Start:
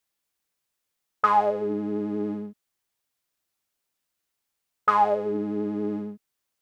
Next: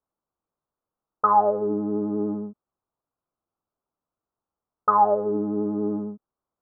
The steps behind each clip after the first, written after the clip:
Butterworth low-pass 1,300 Hz 48 dB per octave
level +2.5 dB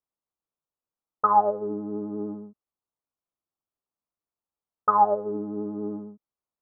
expander for the loud parts 1.5 to 1, over −32 dBFS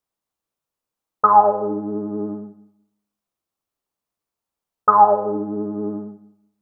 four-comb reverb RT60 0.78 s, combs from 33 ms, DRR 9 dB
level +7 dB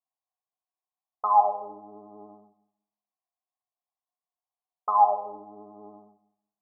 formant resonators in series a
level +1.5 dB

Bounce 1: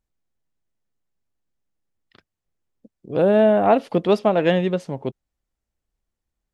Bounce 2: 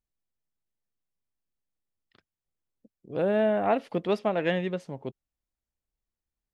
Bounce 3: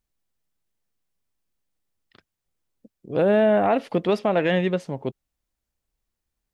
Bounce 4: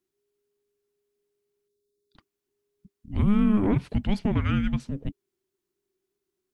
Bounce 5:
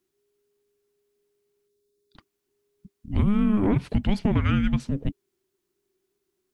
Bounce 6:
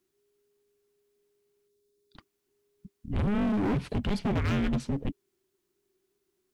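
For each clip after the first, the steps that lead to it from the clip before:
dynamic equaliser 2,000 Hz, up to +6 dB, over −38 dBFS, Q 1.6; level −9 dB
brickwall limiter −19 dBFS, peak gain reduction 5 dB; level +7.5 dB
gain on a spectral selection 0:01.68–0:02.16, 490–3,800 Hz −24 dB; dynamic equaliser 1,900 Hz, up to −4 dB, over −37 dBFS, Q 0.83; frequency shifter −410 Hz; level −2 dB
downward compressor, threshold −22 dBFS, peak gain reduction 6.5 dB; level +5 dB
gain into a clipping stage and back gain 24.5 dB

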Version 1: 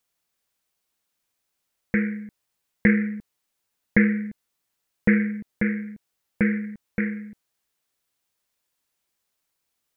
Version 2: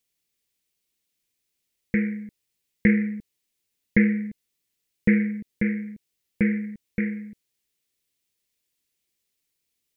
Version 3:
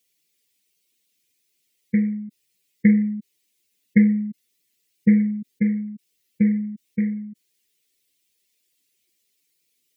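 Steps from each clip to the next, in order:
flat-topped bell 970 Hz −10.5 dB
expanding power law on the bin magnitudes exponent 1.8; high-pass filter 240 Hz 6 dB per octave; level +7.5 dB

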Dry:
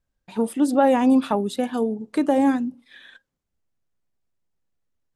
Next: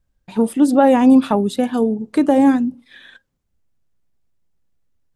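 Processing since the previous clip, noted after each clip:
low-shelf EQ 210 Hz +7.5 dB
level +3.5 dB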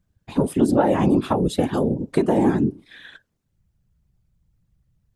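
downward compressor 6 to 1, threshold −15 dBFS, peak gain reduction 8 dB
random phases in short frames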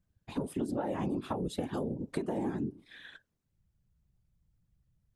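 downward compressor 4 to 1, threshold −24 dBFS, peak gain reduction 10.5 dB
level −7.5 dB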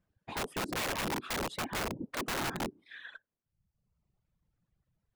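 reverb reduction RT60 1.1 s
mid-hump overdrive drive 16 dB, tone 1,100 Hz, clips at −19.5 dBFS
wrap-around overflow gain 29 dB

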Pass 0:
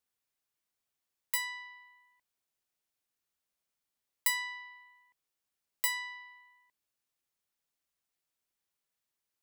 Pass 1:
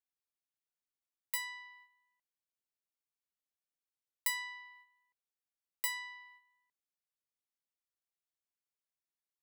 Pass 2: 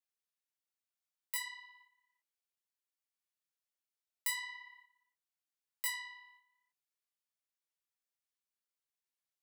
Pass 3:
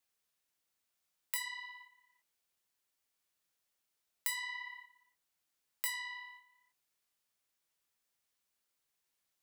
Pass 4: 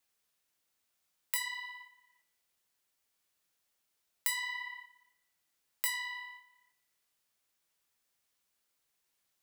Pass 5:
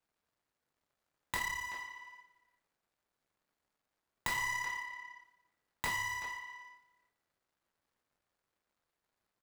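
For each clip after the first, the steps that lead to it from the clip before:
noise gate −56 dBFS, range −8 dB; level −4.5 dB
low-shelf EQ 500 Hz −11.5 dB; micro pitch shift up and down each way 30 cents; level +3 dB
downward compressor 2.5 to 1, threshold −47 dBFS, peak gain reduction 11 dB; level +9 dB
on a send at −15 dB: four-pole ladder high-pass 1,300 Hz, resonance 60% + convolution reverb RT60 1.4 s, pre-delay 7 ms; on the sum: level +3.5 dB
running median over 15 samples; far-end echo of a speakerphone 380 ms, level −9 dB; level +7.5 dB

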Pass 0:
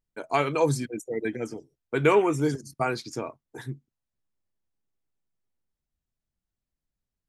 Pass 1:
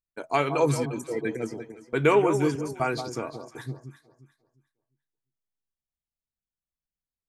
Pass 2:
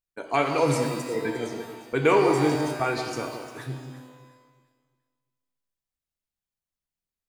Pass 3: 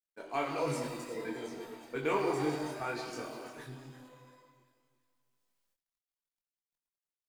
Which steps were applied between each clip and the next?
noise gate −46 dBFS, range −12 dB; on a send: delay that swaps between a low-pass and a high-pass 176 ms, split 1,100 Hz, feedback 51%, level −8 dB
reverb with rising layers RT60 1.1 s, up +12 semitones, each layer −8 dB, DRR 5 dB
mu-law and A-law mismatch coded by mu; parametric band 68 Hz −10 dB 0.98 octaves; multi-voice chorus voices 6, 1.2 Hz, delay 23 ms, depth 3 ms; level −8 dB

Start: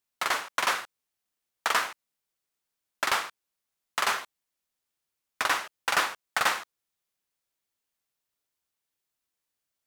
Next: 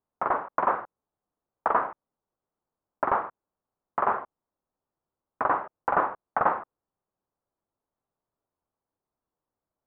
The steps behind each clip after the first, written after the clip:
low-pass filter 1,100 Hz 24 dB per octave
level +7.5 dB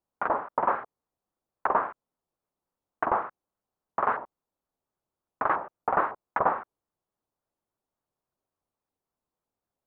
pitch modulation by a square or saw wave saw up 3.6 Hz, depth 250 cents
level −1 dB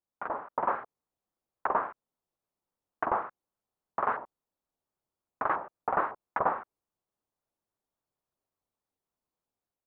automatic gain control gain up to 5.5 dB
level −8.5 dB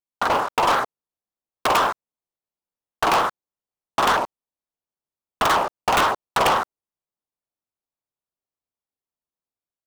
wrap-around overflow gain 17 dB
leveller curve on the samples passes 5
level +2.5 dB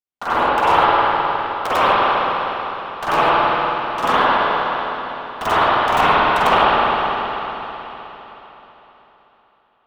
convolution reverb RT60 3.9 s, pre-delay 51 ms, DRR −14 dB
level −7.5 dB

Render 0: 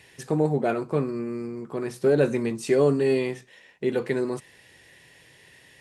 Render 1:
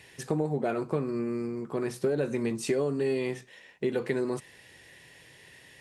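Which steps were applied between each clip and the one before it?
downward compressor 10 to 1, threshold −24 dBFS, peak gain reduction 10 dB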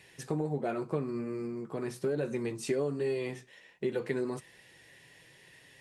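flanger 1.3 Hz, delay 5.2 ms, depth 2.4 ms, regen −51%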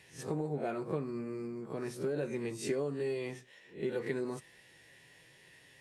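peak hold with a rise ahead of every peak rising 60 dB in 0.30 s
level −3.5 dB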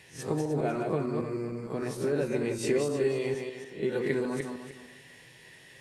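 feedback delay that plays each chunk backwards 152 ms, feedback 47%, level −4 dB
level +5 dB

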